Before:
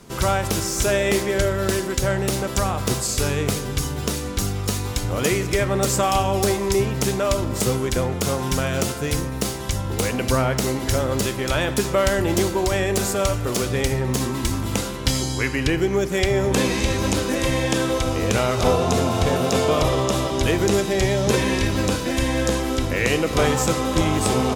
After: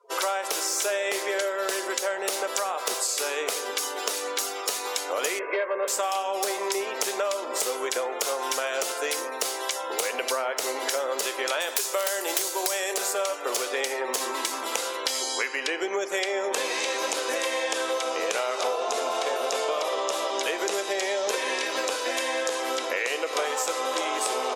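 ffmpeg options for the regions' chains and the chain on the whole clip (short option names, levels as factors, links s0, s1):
-filter_complex "[0:a]asettb=1/sr,asplit=3[s0][s1][s2];[s0]atrim=end=5.394[s3];[s1]atrim=start=5.39:end=5.88,asetpts=PTS-STARTPTS,afade=t=in:d=0.004:c=qsin,afade=t=out:st=0.486:d=0.004:c=qsin,lowpass=f=2300:w=0.5412,lowpass=f=2300:w=1.3066,asoftclip=type=hard:threshold=0.168,aecho=1:1:1.9:0.6,atrim=end_sample=21609[s4];[s2]atrim=start=5.876[s5];[s3][s4]acrossfade=d=0.004:c1=hsin:c2=qsin[s6];[s6][s5]acrossfade=d=0.004:c1=qsin:c2=hsin,asettb=1/sr,asplit=3[s7][s8][s9];[s7]atrim=end=11.604[s10];[s8]atrim=start=11.6:end=12.94,asetpts=PTS-STARTPTS,afade=t=in:d=0.004:c=qsin,afade=t=out:st=1.336:d=0.004:c=qsin,bass=f=250:g=-4,treble=f=4000:g=12,aeval=exprs='(mod(2.37*val(0)+1,2)-1)/2.37':c=same[s11];[s9]atrim=start=12.936[s12];[s10][s11]acrossfade=d=0.004:c1=hsin:c2=qsin[s13];[s13][s12]acrossfade=d=0.004:c1=qsin:c2=hsin,highpass=f=470:w=0.5412,highpass=f=470:w=1.3066,afftdn=nr=33:nf=-44,acompressor=threshold=0.0355:ratio=6,volume=1.68"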